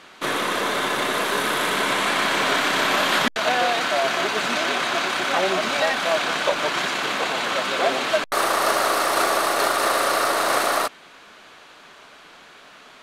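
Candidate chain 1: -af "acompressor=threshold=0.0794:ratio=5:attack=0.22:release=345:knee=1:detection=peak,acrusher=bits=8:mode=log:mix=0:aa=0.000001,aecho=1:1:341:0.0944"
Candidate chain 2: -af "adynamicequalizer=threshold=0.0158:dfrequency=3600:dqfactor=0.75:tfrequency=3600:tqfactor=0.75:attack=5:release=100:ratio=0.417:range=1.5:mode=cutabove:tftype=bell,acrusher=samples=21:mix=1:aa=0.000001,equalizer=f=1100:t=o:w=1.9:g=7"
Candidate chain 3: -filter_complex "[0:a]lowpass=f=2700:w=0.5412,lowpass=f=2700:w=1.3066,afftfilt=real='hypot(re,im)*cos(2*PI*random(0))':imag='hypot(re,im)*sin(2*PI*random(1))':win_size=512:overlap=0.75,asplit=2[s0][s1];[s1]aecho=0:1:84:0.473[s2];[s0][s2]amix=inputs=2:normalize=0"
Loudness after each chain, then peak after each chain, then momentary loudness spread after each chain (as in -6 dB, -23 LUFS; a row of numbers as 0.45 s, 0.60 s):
-28.0 LUFS, -18.0 LUFS, -27.5 LUFS; -17.5 dBFS, -3.0 dBFS, -13.0 dBFS; 18 LU, 4 LU, 3 LU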